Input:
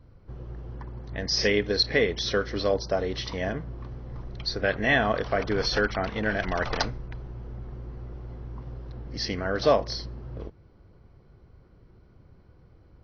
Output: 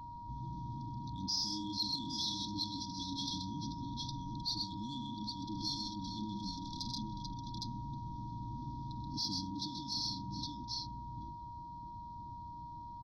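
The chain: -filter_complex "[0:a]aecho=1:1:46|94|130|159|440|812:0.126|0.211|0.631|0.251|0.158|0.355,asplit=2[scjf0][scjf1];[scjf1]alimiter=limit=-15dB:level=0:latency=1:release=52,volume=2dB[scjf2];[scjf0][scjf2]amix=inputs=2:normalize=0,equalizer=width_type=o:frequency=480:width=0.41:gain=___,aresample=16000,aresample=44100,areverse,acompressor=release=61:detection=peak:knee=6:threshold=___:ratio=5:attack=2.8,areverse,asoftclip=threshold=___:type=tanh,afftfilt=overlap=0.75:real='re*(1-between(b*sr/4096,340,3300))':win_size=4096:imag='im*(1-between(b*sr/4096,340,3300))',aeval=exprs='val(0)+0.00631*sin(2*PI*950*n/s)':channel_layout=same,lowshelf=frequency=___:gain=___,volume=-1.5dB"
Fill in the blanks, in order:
-14, -32dB, -21dB, 100, -11.5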